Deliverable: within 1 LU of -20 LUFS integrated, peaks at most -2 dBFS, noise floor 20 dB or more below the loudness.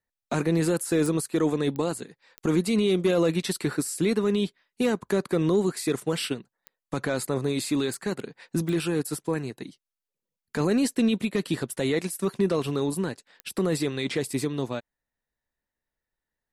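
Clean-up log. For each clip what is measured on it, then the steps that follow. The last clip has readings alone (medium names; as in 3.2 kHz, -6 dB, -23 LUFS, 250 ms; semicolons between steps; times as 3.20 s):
clicks found 7; loudness -27.0 LUFS; peak level -12.0 dBFS; loudness target -20.0 LUFS
-> de-click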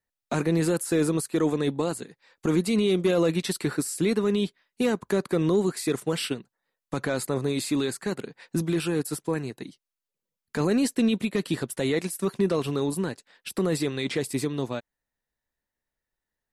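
clicks found 0; loudness -27.0 LUFS; peak level -12.0 dBFS; loudness target -20.0 LUFS
-> trim +7 dB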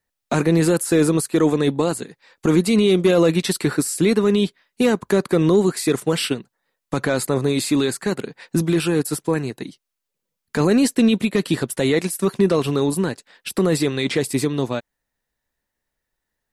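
loudness -20.0 LUFS; peak level -5.0 dBFS; noise floor -81 dBFS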